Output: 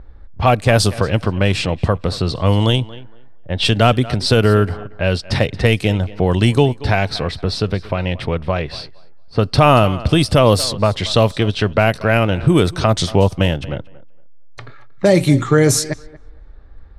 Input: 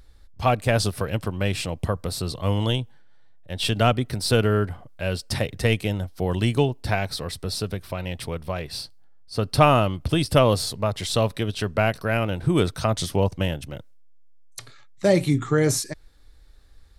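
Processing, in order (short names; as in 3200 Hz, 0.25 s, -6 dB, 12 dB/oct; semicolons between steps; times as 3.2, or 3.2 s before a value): thinning echo 0.231 s, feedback 20%, high-pass 180 Hz, level -20 dB; in parallel at -1 dB: compressor, threshold -30 dBFS, peak gain reduction 18 dB; on the sum: low-pass opened by the level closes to 1200 Hz, open at -15 dBFS; maximiser +7.5 dB; gain -1 dB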